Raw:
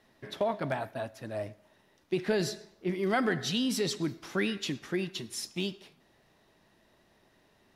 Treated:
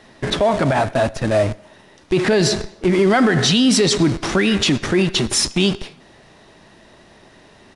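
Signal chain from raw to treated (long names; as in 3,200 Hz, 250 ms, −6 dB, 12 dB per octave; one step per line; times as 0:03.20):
in parallel at −10.5 dB: comparator with hysteresis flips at −43 dBFS
on the sum: downsampling to 22,050 Hz
boost into a limiter +24.5 dB
level −6.5 dB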